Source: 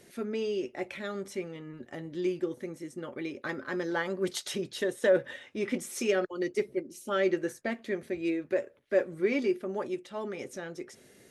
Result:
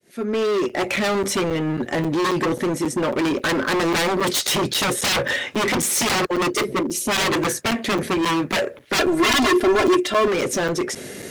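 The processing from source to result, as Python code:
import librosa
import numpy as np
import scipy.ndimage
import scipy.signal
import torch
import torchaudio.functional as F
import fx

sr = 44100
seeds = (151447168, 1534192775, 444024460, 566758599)

y = fx.fade_in_head(x, sr, length_s=1.04)
y = fx.fold_sine(y, sr, drive_db=18, ceiling_db=-14.0)
y = scipy.signal.sosfilt(scipy.signal.butter(2, 57.0, 'highpass', fs=sr, output='sos'), y)
y = np.clip(10.0 ** (19.5 / 20.0) * y, -1.0, 1.0) / 10.0 ** (19.5 / 20.0)
y = fx.comb(y, sr, ms=2.9, depth=0.97, at=(8.98, 10.28))
y = fx.buffer_crackle(y, sr, first_s=0.69, period_s=0.27, block=256, kind='zero')
y = F.gain(torch.from_numpy(y), 1.0).numpy()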